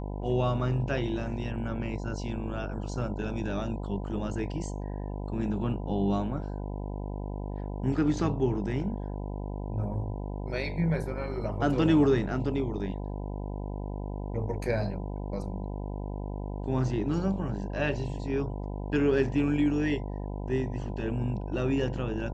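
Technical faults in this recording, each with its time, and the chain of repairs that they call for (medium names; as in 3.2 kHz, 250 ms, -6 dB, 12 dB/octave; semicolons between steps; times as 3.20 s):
buzz 50 Hz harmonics 20 -35 dBFS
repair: de-hum 50 Hz, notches 20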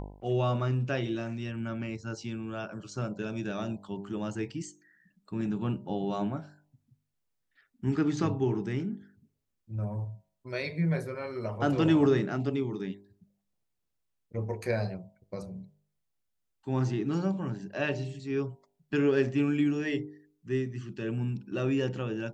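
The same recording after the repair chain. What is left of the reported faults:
nothing left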